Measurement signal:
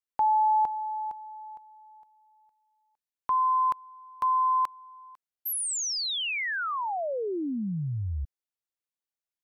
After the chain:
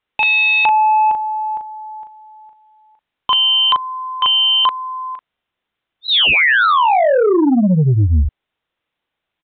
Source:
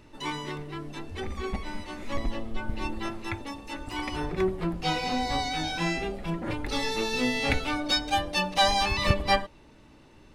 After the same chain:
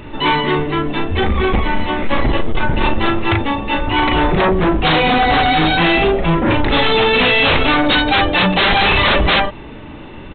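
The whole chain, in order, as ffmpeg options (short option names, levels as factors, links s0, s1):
-filter_complex "[0:a]asplit=2[s0][s1];[s1]adelay=38,volume=0.562[s2];[s0][s2]amix=inputs=2:normalize=0,aresample=8000,aeval=exprs='0.335*sin(PI/2*6.31*val(0)/0.335)':c=same,aresample=44100"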